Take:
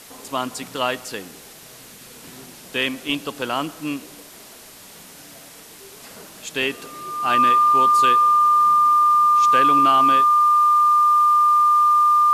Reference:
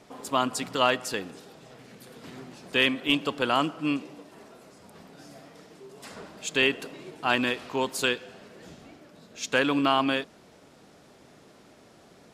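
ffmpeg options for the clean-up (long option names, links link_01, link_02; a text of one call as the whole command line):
ffmpeg -i in.wav -af "bandreject=frequency=1200:width=30,afwtdn=0.0079" out.wav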